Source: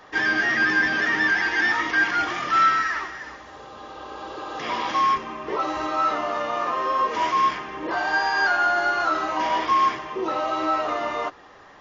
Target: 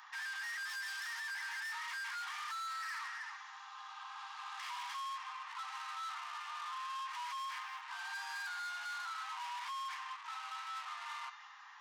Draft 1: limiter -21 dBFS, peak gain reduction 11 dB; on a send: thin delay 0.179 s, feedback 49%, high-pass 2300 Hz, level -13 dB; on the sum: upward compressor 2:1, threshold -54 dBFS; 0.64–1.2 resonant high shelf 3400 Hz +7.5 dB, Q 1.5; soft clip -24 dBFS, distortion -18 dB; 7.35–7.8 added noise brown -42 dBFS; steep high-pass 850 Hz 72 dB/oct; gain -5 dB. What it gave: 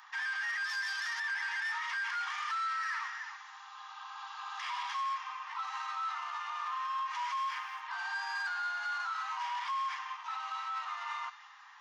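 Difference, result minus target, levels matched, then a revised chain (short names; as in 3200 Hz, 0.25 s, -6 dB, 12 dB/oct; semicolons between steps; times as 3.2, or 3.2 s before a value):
soft clip: distortion -11 dB
limiter -21 dBFS, peak gain reduction 11 dB; on a send: thin delay 0.179 s, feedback 49%, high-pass 2300 Hz, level -13 dB; on the sum: upward compressor 2:1, threshold -54 dBFS; 0.64–1.2 resonant high shelf 3400 Hz +7.5 dB, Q 1.5; soft clip -35 dBFS, distortion -8 dB; 7.35–7.8 added noise brown -42 dBFS; steep high-pass 850 Hz 72 dB/oct; gain -5 dB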